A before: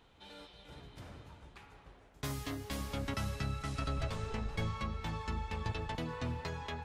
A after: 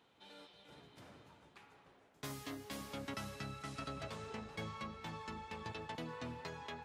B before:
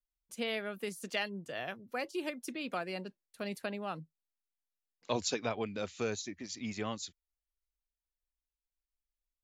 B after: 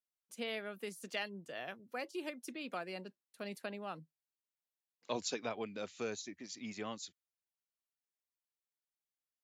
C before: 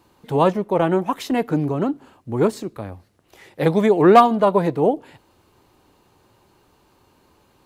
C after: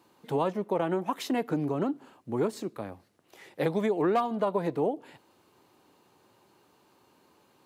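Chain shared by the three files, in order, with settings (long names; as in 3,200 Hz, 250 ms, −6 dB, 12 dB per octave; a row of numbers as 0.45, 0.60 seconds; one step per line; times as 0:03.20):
high-pass filter 160 Hz 12 dB per octave
downward compressor 4 to 1, threshold −20 dBFS
level −4.5 dB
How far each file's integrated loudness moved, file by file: −7.0, −4.5, −11.5 LU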